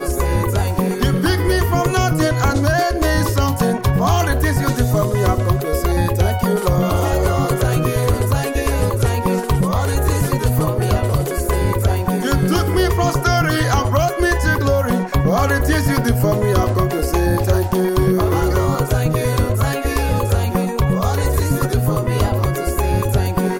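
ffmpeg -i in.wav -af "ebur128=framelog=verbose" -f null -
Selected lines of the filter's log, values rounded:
Integrated loudness:
  I:         -17.5 LUFS
  Threshold: -27.5 LUFS
Loudness range:
  LRA:         1.5 LU
  Threshold: -37.5 LUFS
  LRA low:   -18.3 LUFS
  LRA high:  -16.7 LUFS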